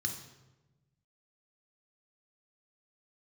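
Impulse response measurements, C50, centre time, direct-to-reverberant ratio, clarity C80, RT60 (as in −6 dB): 8.0 dB, 20 ms, 4.5 dB, 10.5 dB, 1.1 s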